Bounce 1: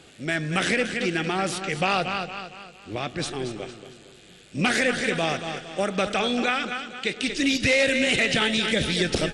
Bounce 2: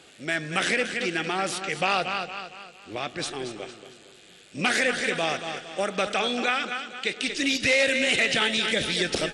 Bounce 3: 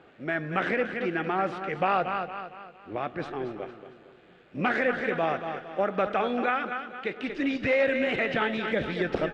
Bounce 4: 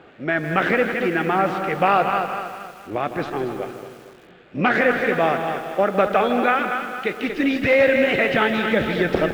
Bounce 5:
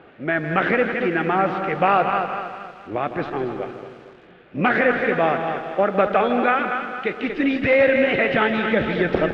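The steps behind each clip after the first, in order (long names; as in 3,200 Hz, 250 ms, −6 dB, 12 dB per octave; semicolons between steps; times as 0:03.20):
low-shelf EQ 220 Hz −11.5 dB
Chebyshev low-pass filter 1,300 Hz, order 2; level +1.5 dB
feedback echo at a low word length 159 ms, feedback 55%, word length 8 bits, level −10 dB; level +7.5 dB
low-pass filter 3,400 Hz 12 dB per octave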